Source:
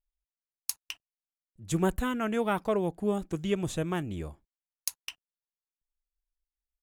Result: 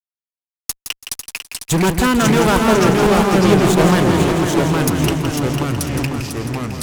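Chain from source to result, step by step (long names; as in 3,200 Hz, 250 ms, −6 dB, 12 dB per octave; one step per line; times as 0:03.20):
high-pass filter 46 Hz 6 dB per octave
fuzz pedal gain 34 dB, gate −40 dBFS
delay with pitch and tempo change per echo 336 ms, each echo −2 semitones, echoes 3
on a send: echo machine with several playback heads 166 ms, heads first and third, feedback 49%, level −8 dB
on the sum: level +1 dB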